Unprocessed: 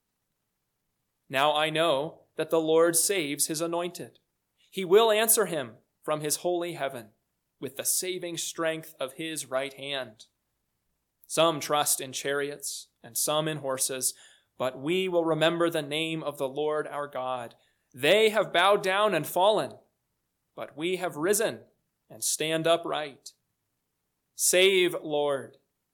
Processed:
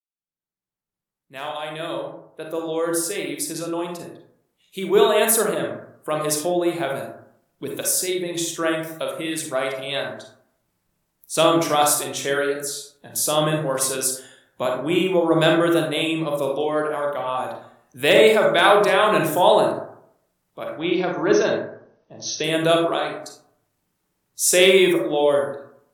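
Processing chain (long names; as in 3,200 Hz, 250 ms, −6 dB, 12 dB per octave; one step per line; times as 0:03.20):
fade in at the beginning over 6.86 s
0:20.73–0:22.44: linear-phase brick-wall low-pass 6,400 Hz
convolution reverb RT60 0.65 s, pre-delay 32 ms, DRR 0.5 dB
level +4.5 dB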